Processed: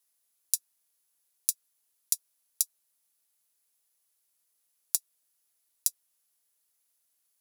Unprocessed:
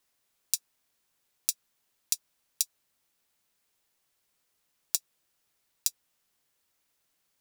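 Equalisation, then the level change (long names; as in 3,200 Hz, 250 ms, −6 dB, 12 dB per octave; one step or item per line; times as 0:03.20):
bass and treble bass −8 dB, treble +8 dB
parametric band 11,000 Hz +9.5 dB 0.31 octaves
−9.0 dB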